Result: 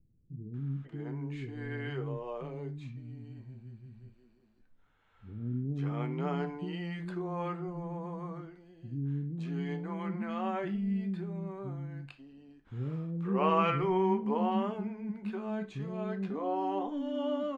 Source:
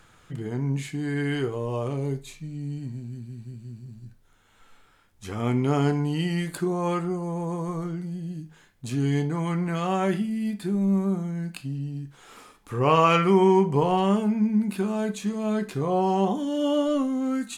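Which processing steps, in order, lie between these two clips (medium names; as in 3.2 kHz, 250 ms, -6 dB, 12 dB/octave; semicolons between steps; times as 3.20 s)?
low-pass 2.7 kHz 12 dB/octave; bands offset in time lows, highs 540 ms, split 300 Hz; trim -8 dB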